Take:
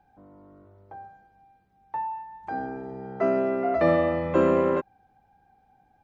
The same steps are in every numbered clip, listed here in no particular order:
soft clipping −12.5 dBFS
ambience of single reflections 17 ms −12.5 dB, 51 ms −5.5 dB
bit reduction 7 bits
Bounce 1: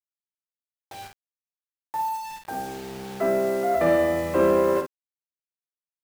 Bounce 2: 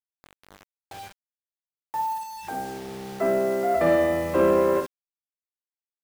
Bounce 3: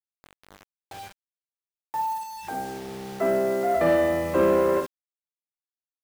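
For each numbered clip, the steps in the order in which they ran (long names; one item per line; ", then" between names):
soft clipping, then bit reduction, then ambience of single reflections
soft clipping, then ambience of single reflections, then bit reduction
ambience of single reflections, then soft clipping, then bit reduction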